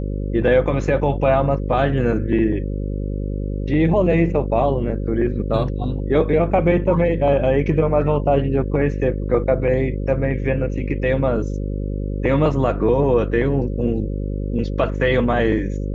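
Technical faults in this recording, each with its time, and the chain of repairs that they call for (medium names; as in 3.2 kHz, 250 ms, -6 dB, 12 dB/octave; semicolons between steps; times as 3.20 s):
buzz 50 Hz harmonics 11 -24 dBFS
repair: de-hum 50 Hz, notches 11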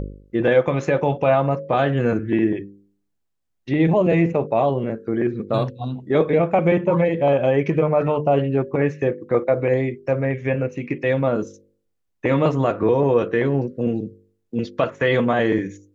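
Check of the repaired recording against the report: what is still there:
nothing left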